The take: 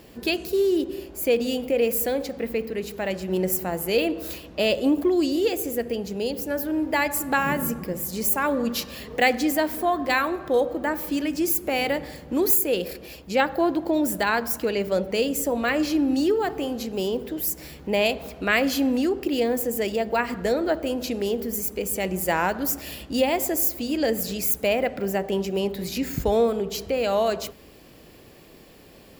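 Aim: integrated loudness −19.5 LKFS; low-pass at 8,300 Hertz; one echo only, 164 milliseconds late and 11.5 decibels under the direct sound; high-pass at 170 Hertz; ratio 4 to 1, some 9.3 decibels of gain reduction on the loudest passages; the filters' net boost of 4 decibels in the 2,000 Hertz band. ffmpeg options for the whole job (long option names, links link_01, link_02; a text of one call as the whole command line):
ffmpeg -i in.wav -af "highpass=170,lowpass=8300,equalizer=frequency=2000:width_type=o:gain=5,acompressor=threshold=-23dB:ratio=4,aecho=1:1:164:0.266,volume=8.5dB" out.wav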